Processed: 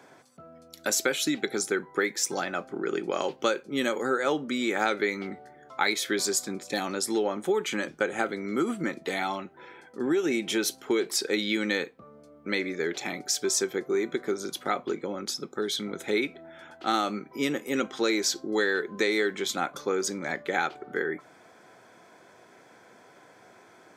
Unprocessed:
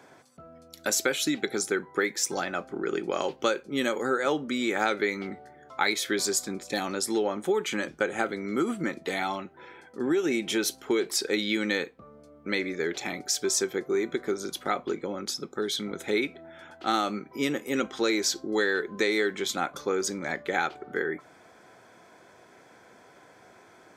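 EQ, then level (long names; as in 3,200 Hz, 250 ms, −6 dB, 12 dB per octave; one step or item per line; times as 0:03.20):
high-pass filter 99 Hz
0.0 dB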